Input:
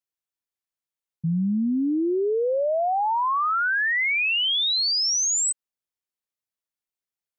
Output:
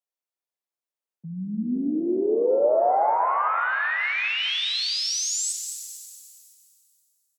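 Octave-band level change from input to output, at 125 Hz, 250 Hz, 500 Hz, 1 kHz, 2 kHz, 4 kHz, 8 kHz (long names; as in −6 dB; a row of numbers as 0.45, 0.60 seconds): can't be measured, −3.0 dB, +2.5 dB, +1.0 dB, −2.5 dB, −3.5 dB, −3.5 dB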